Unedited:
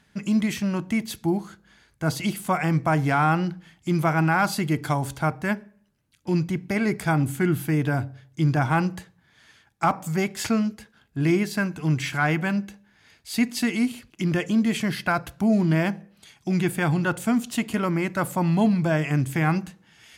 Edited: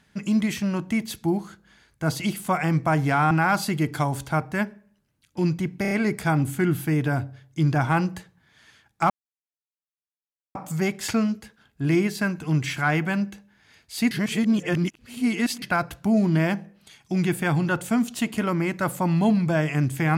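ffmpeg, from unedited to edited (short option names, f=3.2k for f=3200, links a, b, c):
-filter_complex "[0:a]asplit=8[a][b][c][d][e][f][g][h];[a]atrim=end=3.312[i];[b]atrim=start=4.208:end=6.752[j];[c]atrim=start=6.718:end=6.752[k];[d]atrim=start=6.718:end=6.752[l];[e]atrim=start=6.718:end=9.91,asetpts=PTS-STARTPTS,afade=t=out:st=3.188:d=0.004:c=hsin,apad=pad_dur=1.45[m];[f]atrim=start=9.91:end=13.472,asetpts=PTS-STARTPTS,afade=t=in:d=0.004:c=hsin[n];[g]atrim=start=13.468:end=14.982,asetpts=PTS-STARTPTS,areverse[o];[h]atrim=start=14.978[p];[i][j]acrossfade=d=0.004:c1=hsin:c2=hsin[q];[q][k]acrossfade=d=0.004:c1=hsin:c2=hsin[r];[r][l]acrossfade=d=0.004:c1=hsin:c2=hsin[s];[m][n]concat=n=2:v=0:a=1[t];[s][t]acrossfade=d=0.004:c1=hsin:c2=hsin[u];[u][o]acrossfade=d=0.004:c1=hsin:c2=hsin[v];[v][p]acrossfade=d=0.004:c1=hsin:c2=hsin"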